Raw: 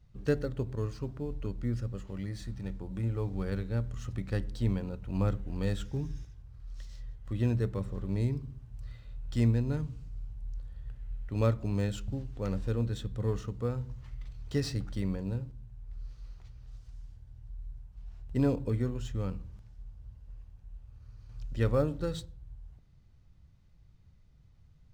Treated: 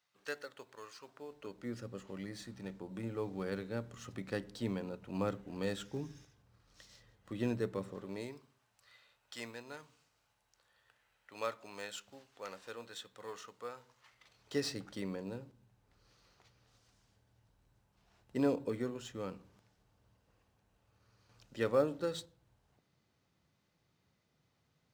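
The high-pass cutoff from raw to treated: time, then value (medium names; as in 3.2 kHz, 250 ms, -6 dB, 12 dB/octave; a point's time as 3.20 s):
1.01 s 1 kHz
1.87 s 250 Hz
7.89 s 250 Hz
8.53 s 830 Hz
14.04 s 830 Hz
14.62 s 300 Hz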